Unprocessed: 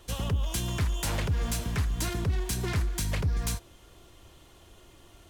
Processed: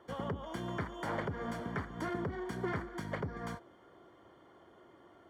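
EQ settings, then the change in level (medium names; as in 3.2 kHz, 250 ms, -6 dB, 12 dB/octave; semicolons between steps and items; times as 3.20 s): Savitzky-Golay filter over 41 samples; high-pass 220 Hz 12 dB/octave; 0.0 dB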